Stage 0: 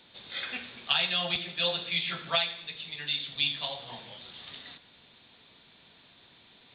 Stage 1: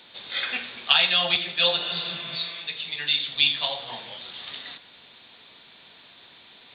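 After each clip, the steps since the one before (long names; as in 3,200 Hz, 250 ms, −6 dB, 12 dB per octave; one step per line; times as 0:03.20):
healed spectral selection 0:01.83–0:02.54, 300–3,700 Hz both
low-shelf EQ 280 Hz −10 dB
level +8 dB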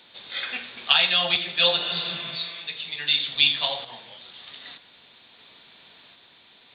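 sample-and-hold tremolo 1.3 Hz
level +1.5 dB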